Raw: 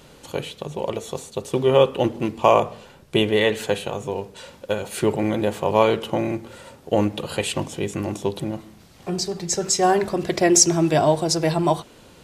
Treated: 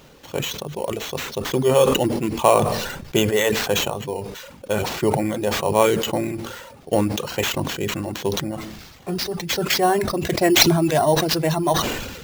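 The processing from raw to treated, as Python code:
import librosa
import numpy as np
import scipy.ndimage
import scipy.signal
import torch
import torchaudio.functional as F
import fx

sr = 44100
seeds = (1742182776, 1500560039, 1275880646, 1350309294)

y = fx.dereverb_blind(x, sr, rt60_s=0.87)
y = fx.sample_hold(y, sr, seeds[0], rate_hz=9800.0, jitter_pct=0)
y = fx.sustainer(y, sr, db_per_s=44.0)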